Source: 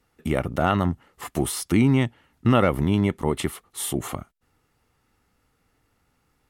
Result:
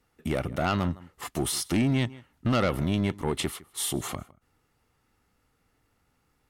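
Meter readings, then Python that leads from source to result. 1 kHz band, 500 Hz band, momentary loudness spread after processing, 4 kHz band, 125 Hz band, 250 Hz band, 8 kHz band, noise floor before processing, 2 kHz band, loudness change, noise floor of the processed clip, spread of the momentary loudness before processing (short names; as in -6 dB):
-5.5 dB, -5.5 dB, 8 LU, +1.0 dB, -5.0 dB, -5.5 dB, -0.5 dB, -70 dBFS, -3.5 dB, -5.0 dB, -72 dBFS, 11 LU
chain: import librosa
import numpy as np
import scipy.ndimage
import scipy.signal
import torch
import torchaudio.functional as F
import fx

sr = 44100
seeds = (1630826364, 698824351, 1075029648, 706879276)

y = x + 10.0 ** (-23.0 / 20.0) * np.pad(x, (int(158 * sr / 1000.0), 0))[:len(x)]
y = 10.0 ** (-16.0 / 20.0) * np.tanh(y / 10.0 ** (-16.0 / 20.0))
y = fx.dynamic_eq(y, sr, hz=4600.0, q=0.85, threshold_db=-47.0, ratio=4.0, max_db=6)
y = y * 10.0 ** (-2.5 / 20.0)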